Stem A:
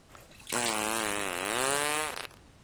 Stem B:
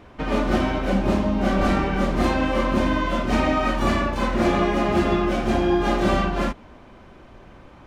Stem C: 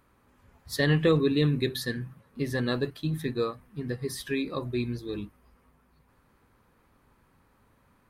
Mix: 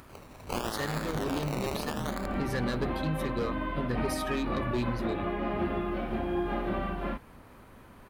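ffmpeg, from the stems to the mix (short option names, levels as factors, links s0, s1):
-filter_complex "[0:a]acrusher=samples=21:mix=1:aa=0.000001:lfo=1:lforange=12.6:lforate=0.77,volume=1.26[s0];[1:a]acrossover=split=2900[s1][s2];[s2]acompressor=threshold=0.00501:ratio=4:attack=1:release=60[s3];[s1][s3]amix=inputs=2:normalize=0,lowpass=f=3900:w=0.5412,lowpass=f=3900:w=1.3066,adelay=650,volume=0.316[s4];[2:a]acompressor=mode=upward:threshold=0.00562:ratio=2.5,volume=20,asoftclip=hard,volume=0.0501,volume=1.12[s5];[s0][s4][s5]amix=inputs=3:normalize=0,alimiter=limit=0.0891:level=0:latency=1:release=216"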